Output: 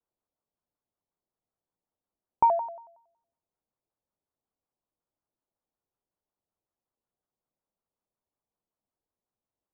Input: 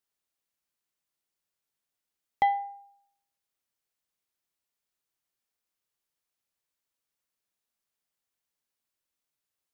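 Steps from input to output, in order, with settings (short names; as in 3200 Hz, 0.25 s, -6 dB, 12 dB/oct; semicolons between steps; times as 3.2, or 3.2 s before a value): LPF 1000 Hz 24 dB/oct; shaped vibrato square 5.4 Hz, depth 250 cents; gain +4.5 dB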